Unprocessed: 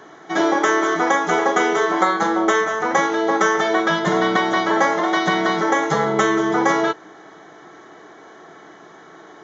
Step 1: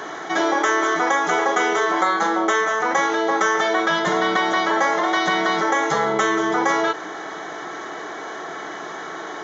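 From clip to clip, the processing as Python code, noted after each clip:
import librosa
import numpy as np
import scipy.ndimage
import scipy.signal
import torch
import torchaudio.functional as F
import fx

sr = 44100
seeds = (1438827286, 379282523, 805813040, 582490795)

y = fx.low_shelf(x, sr, hz=320.0, db=-10.5)
y = fx.env_flatten(y, sr, amount_pct=50)
y = y * librosa.db_to_amplitude(-2.0)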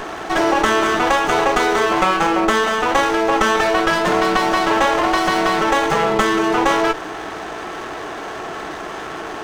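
y = fx.running_max(x, sr, window=9)
y = y * librosa.db_to_amplitude(4.0)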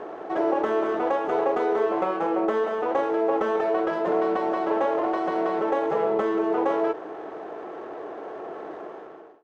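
y = fx.fade_out_tail(x, sr, length_s=0.64)
y = fx.bandpass_q(y, sr, hz=480.0, q=1.6)
y = y * librosa.db_to_amplitude(-2.5)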